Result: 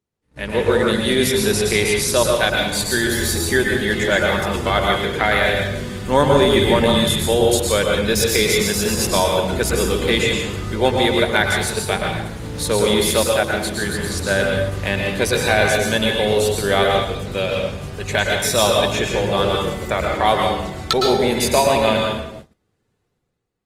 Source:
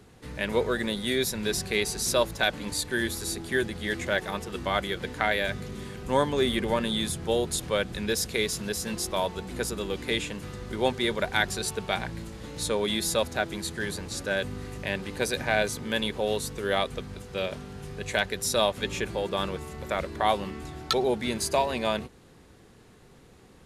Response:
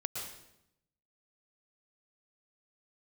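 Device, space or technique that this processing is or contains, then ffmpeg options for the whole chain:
speakerphone in a meeting room: -filter_complex "[0:a]asettb=1/sr,asplit=3[link_01][link_02][link_03];[link_01]atrim=end=13.114[link_04];[link_02]atrim=start=13.11:end=13.55,asetpts=PTS-STARTPTS,afade=type=in:duration=0.004:curve=qsin,afade=type=out:start_time=0.436:duration=0.004:curve=qsin,lowshelf=frequency=350:gain=-4[link_05];[link_03]atrim=start=13.546[link_06];[link_04][link_05]acrossfade=duration=0.004:curve1=hsin:curve2=qsin[link_07];[link_07][link_06]acrossfade=duration=0.004:curve1=qsin:curve2=hsin[link_08];[1:a]atrim=start_sample=2205[link_09];[link_08][link_09]afir=irnorm=-1:irlink=0,dynaudnorm=framelen=130:gausssize=9:maxgain=10dB,agate=range=-29dB:threshold=-35dB:ratio=16:detection=peak,volume=1dB" -ar 48000 -c:a libopus -b:a 24k

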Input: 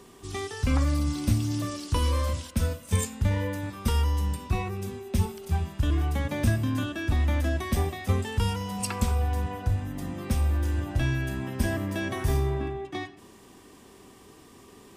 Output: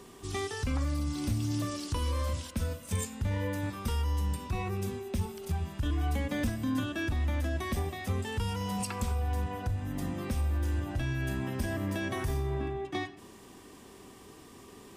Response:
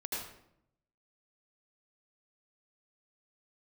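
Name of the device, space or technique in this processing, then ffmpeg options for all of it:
clipper into limiter: -filter_complex "[0:a]asoftclip=type=hard:threshold=-15.5dB,alimiter=limit=-23dB:level=0:latency=1:release=226,asettb=1/sr,asplit=3[link_01][link_02][link_03];[link_01]atrim=end=5.854[link_04];[link_02]atrim=start=5.85:end=6.8,asetpts=PTS-STARTPTS,afade=type=in:duration=0.004:curve=qsin,afade=type=out:start_time=0.946:duration=0.004:curve=qsin,aecho=1:1:4:0.59,atrim=end_sample=41895[link_05];[link_03]atrim=start=6.796[link_06];[link_04][link_05]acrossfade=duration=0.004:curve1=hsin:curve2=qsin[link_07];[link_07][link_06]acrossfade=duration=0.004:curve1=qsin:curve2=hsin"

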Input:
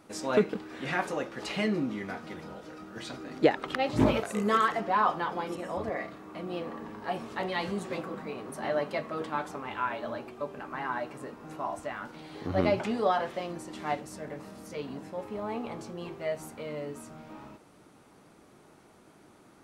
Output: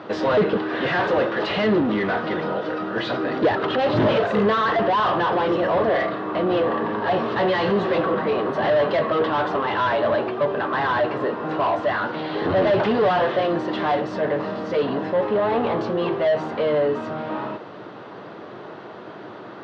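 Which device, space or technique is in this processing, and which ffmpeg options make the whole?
overdrive pedal into a guitar cabinet: -filter_complex "[0:a]asplit=2[link_01][link_02];[link_02]highpass=frequency=720:poles=1,volume=34dB,asoftclip=type=tanh:threshold=-8.5dB[link_03];[link_01][link_03]amix=inputs=2:normalize=0,lowpass=frequency=1400:poles=1,volume=-6dB,highpass=100,equalizer=frequency=110:width_type=q:width=4:gain=8,equalizer=frequency=260:width_type=q:width=4:gain=-5,equalizer=frequency=830:width_type=q:width=4:gain=-5,equalizer=frequency=1300:width_type=q:width=4:gain=-4,equalizer=frequency=2300:width_type=q:width=4:gain=-9,lowpass=frequency=4000:width=0.5412,lowpass=frequency=4000:width=1.3066"

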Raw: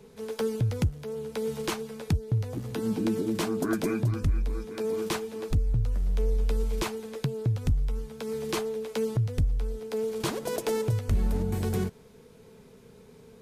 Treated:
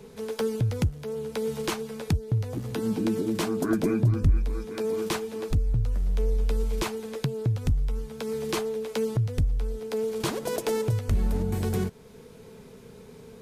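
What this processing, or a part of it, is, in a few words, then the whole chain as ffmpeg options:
parallel compression: -filter_complex "[0:a]asplit=2[link_01][link_02];[link_02]acompressor=threshold=-41dB:ratio=6,volume=-2dB[link_03];[link_01][link_03]amix=inputs=2:normalize=0,asettb=1/sr,asplit=3[link_04][link_05][link_06];[link_04]atrim=end=3.704[link_07];[link_05]atrim=start=3.7:end=4.37,asetpts=PTS-STARTPTS,afade=type=in:duration=0.004:curve=qsin,afade=type=out:start_time=0.666:duration=0.004:curve=qsin,tiltshelf=frequency=660:gain=4[link_08];[link_06]atrim=start=4.366[link_09];[link_07][link_08]acrossfade=duration=0.004:curve1=hsin:curve2=qsin[link_10];[link_10][link_09]acrossfade=duration=0.004:curve1=qsin:curve2=hsin"

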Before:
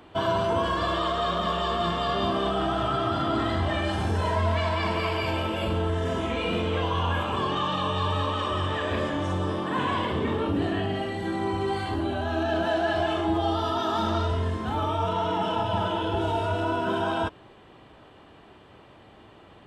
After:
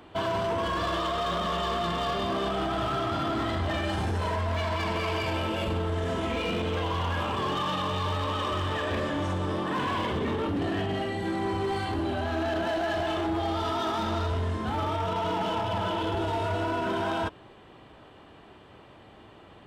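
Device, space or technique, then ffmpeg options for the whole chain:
limiter into clipper: -af "alimiter=limit=-19.5dB:level=0:latency=1:release=12,asoftclip=type=hard:threshold=-24.5dB"

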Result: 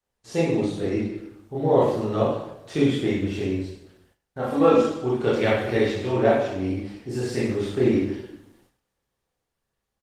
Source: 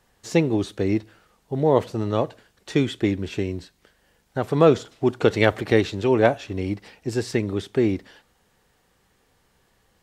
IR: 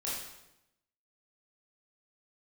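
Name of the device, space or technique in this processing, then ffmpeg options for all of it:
speakerphone in a meeting room: -filter_complex "[0:a]asplit=3[link_01][link_02][link_03];[link_01]afade=type=out:start_time=4.38:duration=0.02[link_04];[link_02]aecho=1:1:3.7:0.79,afade=type=in:start_time=4.38:duration=0.02,afade=type=out:start_time=4.94:duration=0.02[link_05];[link_03]afade=type=in:start_time=4.94:duration=0.02[link_06];[link_04][link_05][link_06]amix=inputs=3:normalize=0[link_07];[1:a]atrim=start_sample=2205[link_08];[link_07][link_08]afir=irnorm=-1:irlink=0,dynaudnorm=framelen=190:gausssize=13:maxgain=7dB,agate=range=-15dB:threshold=-54dB:ratio=16:detection=peak,volume=-4.5dB" -ar 48000 -c:a libopus -b:a 24k

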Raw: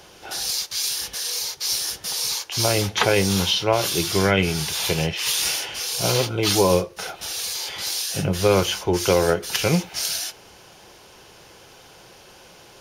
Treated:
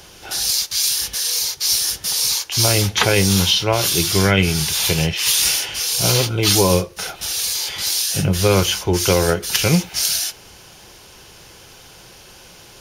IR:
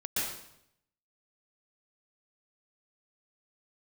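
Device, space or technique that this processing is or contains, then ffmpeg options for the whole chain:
smiley-face EQ: -af "lowshelf=frequency=88:gain=7,equalizer=frequency=620:width_type=o:width=2:gain=-4,highshelf=frequency=5600:gain=4.5,volume=4dB"

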